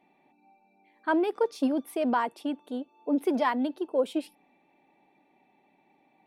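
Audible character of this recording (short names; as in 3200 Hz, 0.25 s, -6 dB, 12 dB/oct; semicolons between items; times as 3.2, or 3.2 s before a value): noise floor -67 dBFS; spectral tilt -2.5 dB/oct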